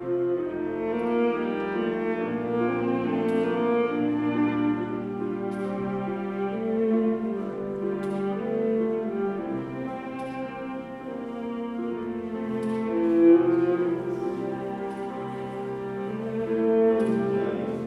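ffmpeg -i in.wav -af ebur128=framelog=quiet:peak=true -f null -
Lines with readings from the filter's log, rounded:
Integrated loudness:
  I:         -26.9 LUFS
  Threshold: -36.9 LUFS
Loudness range:
  LRA:         6.1 LU
  Threshold: -47.0 LUFS
  LRA low:   -30.7 LUFS
  LRA high:  -24.6 LUFS
True peak:
  Peak:       -8.0 dBFS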